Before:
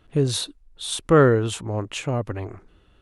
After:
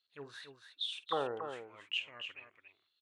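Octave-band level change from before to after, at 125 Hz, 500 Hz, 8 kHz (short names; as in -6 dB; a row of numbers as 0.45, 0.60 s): -36.0, -20.5, -29.5 dB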